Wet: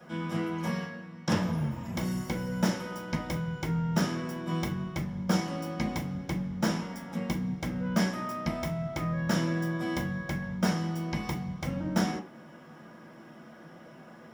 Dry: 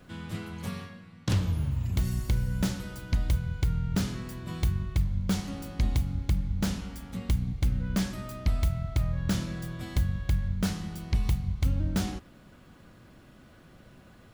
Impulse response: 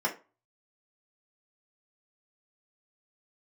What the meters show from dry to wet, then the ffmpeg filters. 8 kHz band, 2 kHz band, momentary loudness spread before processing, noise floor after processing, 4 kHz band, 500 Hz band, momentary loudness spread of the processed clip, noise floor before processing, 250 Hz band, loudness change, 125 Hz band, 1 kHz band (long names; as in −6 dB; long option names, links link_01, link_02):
−0.5 dB, +5.5 dB, 9 LU, −50 dBFS, +1.0 dB, +7.0 dB, 21 LU, −54 dBFS, +3.5 dB, −1.0 dB, −4.0 dB, +8.0 dB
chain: -filter_complex "[1:a]atrim=start_sample=2205[link_01];[0:a][link_01]afir=irnorm=-1:irlink=0,volume=-3dB"